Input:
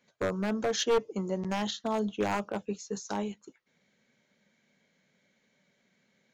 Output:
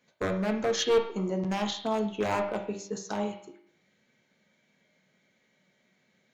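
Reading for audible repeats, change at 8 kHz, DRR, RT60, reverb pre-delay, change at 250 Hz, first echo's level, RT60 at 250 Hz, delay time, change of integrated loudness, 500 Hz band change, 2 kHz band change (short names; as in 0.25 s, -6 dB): none, 0.0 dB, 2.0 dB, 0.60 s, 3 ms, +1.5 dB, none, 0.60 s, none, +2.0 dB, +2.5 dB, +1.5 dB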